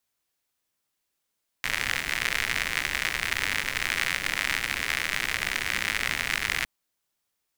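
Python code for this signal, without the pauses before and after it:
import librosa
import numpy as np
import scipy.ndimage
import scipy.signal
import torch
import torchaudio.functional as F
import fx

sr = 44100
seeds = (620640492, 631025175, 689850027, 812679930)

y = fx.rain(sr, seeds[0], length_s=5.01, drops_per_s=99.0, hz=2000.0, bed_db=-10.5)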